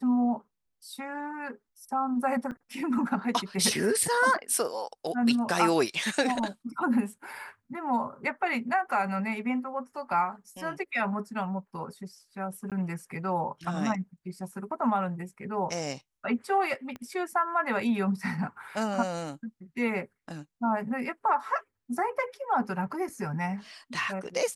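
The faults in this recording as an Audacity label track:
2.510000	2.520000	drop-out 7.1 ms
12.700000	12.720000	drop-out 17 ms
16.960000	16.960000	click −26 dBFS

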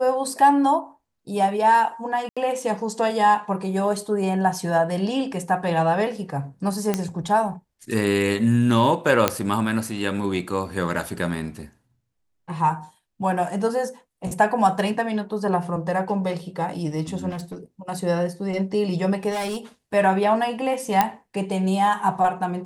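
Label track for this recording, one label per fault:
2.290000	2.370000	drop-out 76 ms
6.940000	6.940000	click −8 dBFS
9.280000	9.280000	click −2 dBFS
17.290000	17.560000	clipping −28.5 dBFS
19.300000	19.580000	clipping −23.5 dBFS
21.010000	21.010000	click −4 dBFS

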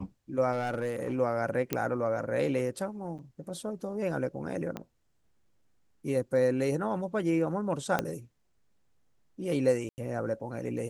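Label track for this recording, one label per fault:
0.520000	1.140000	clipping −26.5 dBFS
1.730000	1.730000	click −13 dBFS
3.180000	3.190000	drop-out 8 ms
4.770000	4.770000	click −22 dBFS
7.990000	7.990000	click −13 dBFS
9.890000	9.980000	drop-out 89 ms

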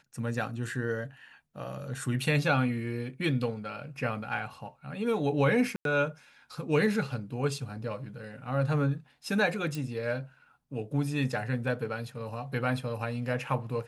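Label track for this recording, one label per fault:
5.760000	5.850000	drop-out 92 ms
9.750000	9.750000	click

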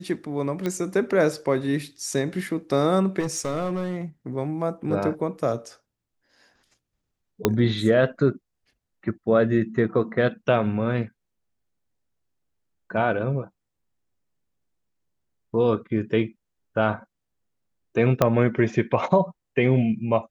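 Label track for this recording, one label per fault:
0.660000	0.660000	click −14 dBFS
3.190000	3.990000	clipping −22 dBFS
7.450000	7.450000	click −4 dBFS
18.220000	18.220000	click −5 dBFS

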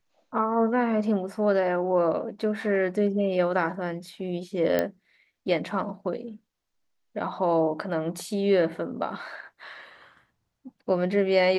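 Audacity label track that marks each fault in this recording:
4.790000	4.790000	click −11 dBFS

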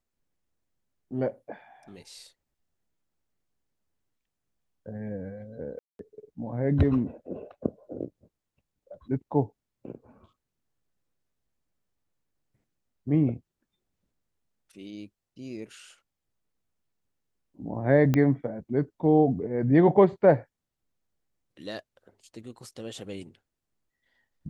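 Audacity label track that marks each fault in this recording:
5.790000	5.990000	drop-out 202 ms
18.140000	18.140000	click −12 dBFS

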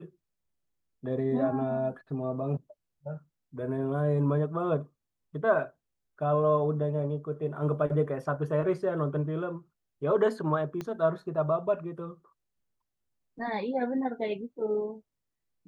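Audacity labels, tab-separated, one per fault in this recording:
10.810000	10.810000	click −22 dBFS

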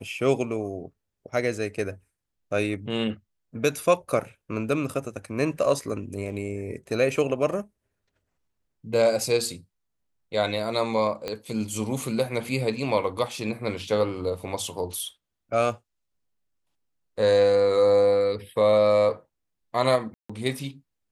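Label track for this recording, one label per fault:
11.280000	11.280000	click −16 dBFS
20.140000	20.300000	drop-out 155 ms

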